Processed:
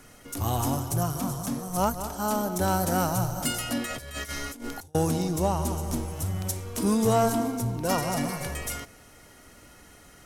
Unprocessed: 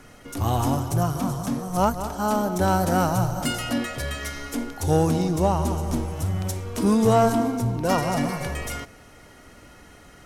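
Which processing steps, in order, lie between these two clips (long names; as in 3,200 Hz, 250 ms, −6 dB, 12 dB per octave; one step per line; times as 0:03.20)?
high-shelf EQ 6,200 Hz +10.5 dB
0:03.86–0:04.95: compressor whose output falls as the input rises −32 dBFS, ratio −0.5
level −4.5 dB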